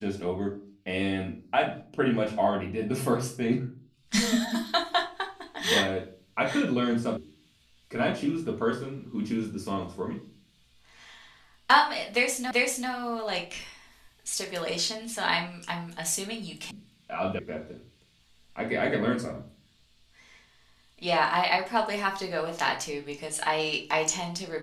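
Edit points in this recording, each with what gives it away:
7.17 s: sound stops dead
12.51 s: repeat of the last 0.39 s
16.71 s: sound stops dead
17.39 s: sound stops dead

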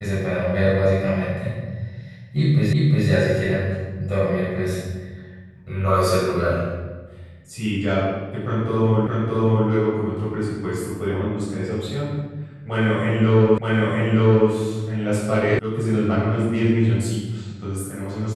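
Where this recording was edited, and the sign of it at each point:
2.73 s: repeat of the last 0.36 s
9.07 s: repeat of the last 0.62 s
13.58 s: repeat of the last 0.92 s
15.59 s: sound stops dead

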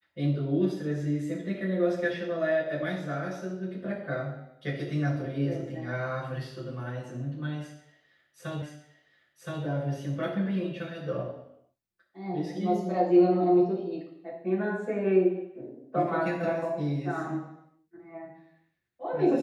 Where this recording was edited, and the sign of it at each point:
8.62 s: repeat of the last 1.02 s

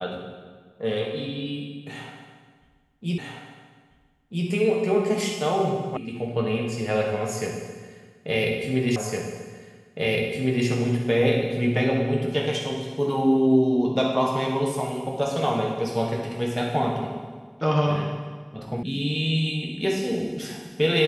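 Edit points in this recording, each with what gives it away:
3.18 s: repeat of the last 1.29 s
5.97 s: sound stops dead
8.96 s: repeat of the last 1.71 s
18.83 s: sound stops dead

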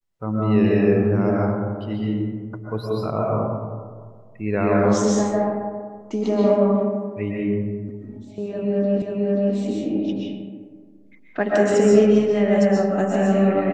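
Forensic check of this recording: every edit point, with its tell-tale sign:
9.02 s: repeat of the last 0.53 s

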